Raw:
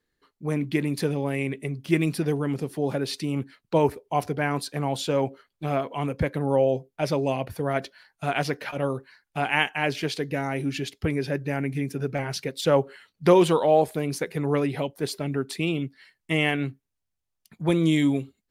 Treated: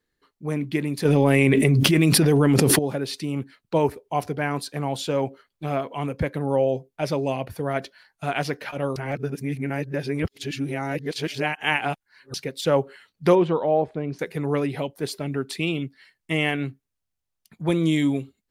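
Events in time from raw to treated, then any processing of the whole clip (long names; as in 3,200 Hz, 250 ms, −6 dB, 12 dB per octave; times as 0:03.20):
0:01.05–0:02.79: envelope flattener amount 100%
0:08.96–0:12.34: reverse
0:13.35–0:14.19: head-to-tape spacing loss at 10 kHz 33 dB
0:15.26–0:15.84: dynamic equaliser 3,100 Hz, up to +3 dB, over −44 dBFS, Q 0.76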